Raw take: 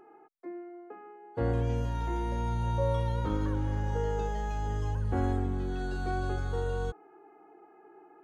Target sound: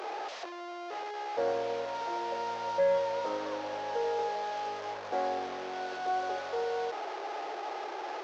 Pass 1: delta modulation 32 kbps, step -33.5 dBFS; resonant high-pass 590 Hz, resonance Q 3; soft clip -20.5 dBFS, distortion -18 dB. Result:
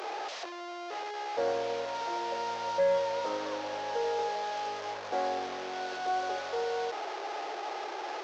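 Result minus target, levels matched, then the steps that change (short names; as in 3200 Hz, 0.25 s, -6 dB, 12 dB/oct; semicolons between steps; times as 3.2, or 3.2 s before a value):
4000 Hz band +3.0 dB
add after resonant high-pass: high shelf 2600 Hz -5.5 dB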